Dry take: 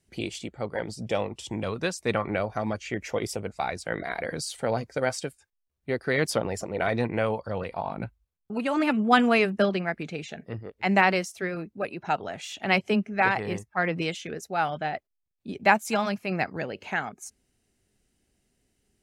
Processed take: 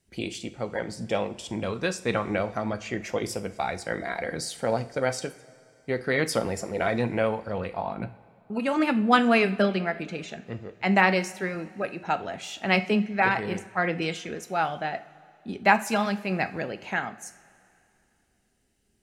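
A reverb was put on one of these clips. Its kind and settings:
coupled-rooms reverb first 0.38 s, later 2.7 s, from −18 dB, DRR 9 dB

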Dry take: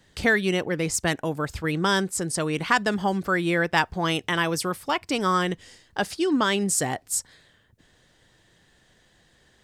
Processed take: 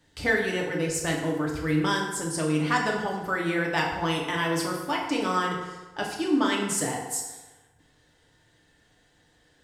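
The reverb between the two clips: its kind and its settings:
feedback delay network reverb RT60 1.2 s, low-frequency decay 0.85×, high-frequency decay 0.65×, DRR −2 dB
level −6.5 dB

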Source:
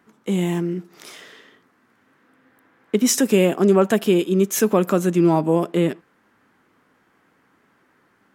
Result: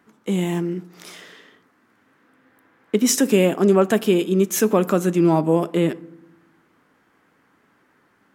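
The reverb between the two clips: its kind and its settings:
feedback delay network reverb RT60 0.88 s, low-frequency decay 1.6×, high-frequency decay 0.5×, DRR 17.5 dB

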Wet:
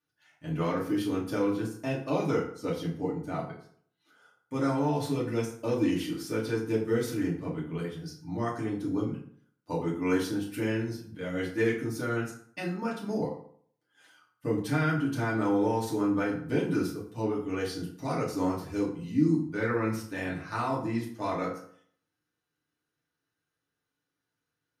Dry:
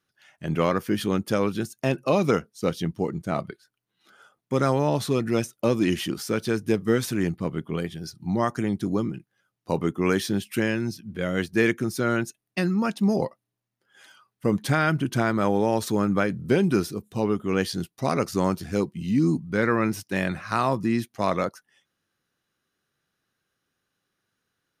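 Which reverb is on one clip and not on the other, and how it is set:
feedback delay network reverb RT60 0.58 s, low-frequency decay 1×, high-frequency decay 0.65×, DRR −6.5 dB
level −14 dB

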